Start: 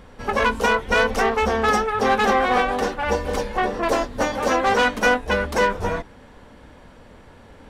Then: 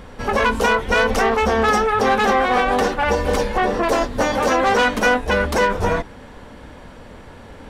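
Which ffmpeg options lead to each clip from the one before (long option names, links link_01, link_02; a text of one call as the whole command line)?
ffmpeg -i in.wav -af "alimiter=level_in=14dB:limit=-1dB:release=50:level=0:latency=1,volume=-7.5dB" out.wav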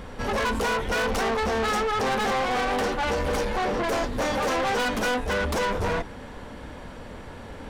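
ffmpeg -i in.wav -af "asoftclip=type=tanh:threshold=-22.5dB" out.wav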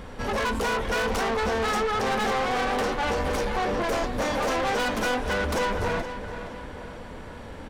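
ffmpeg -i in.wav -filter_complex "[0:a]asplit=2[link_01][link_02];[link_02]adelay=470,lowpass=frequency=4500:poles=1,volume=-10.5dB,asplit=2[link_03][link_04];[link_04]adelay=470,lowpass=frequency=4500:poles=1,volume=0.49,asplit=2[link_05][link_06];[link_06]adelay=470,lowpass=frequency=4500:poles=1,volume=0.49,asplit=2[link_07][link_08];[link_08]adelay=470,lowpass=frequency=4500:poles=1,volume=0.49,asplit=2[link_09][link_10];[link_10]adelay=470,lowpass=frequency=4500:poles=1,volume=0.49[link_11];[link_01][link_03][link_05][link_07][link_09][link_11]amix=inputs=6:normalize=0,volume=-1dB" out.wav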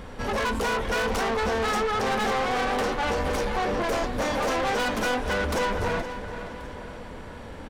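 ffmpeg -i in.wav -af "aecho=1:1:1080:0.0668" out.wav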